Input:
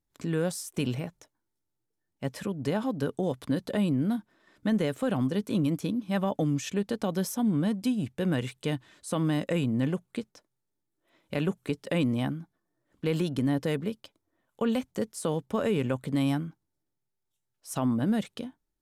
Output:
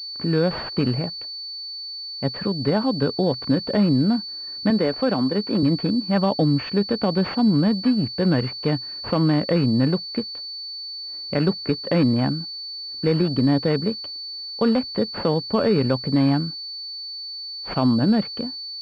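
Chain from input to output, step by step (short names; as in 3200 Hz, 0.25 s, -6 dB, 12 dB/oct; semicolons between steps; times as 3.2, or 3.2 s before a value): 4.7–5.63 HPF 210 Hz; pulse-width modulation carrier 4500 Hz; gain +8 dB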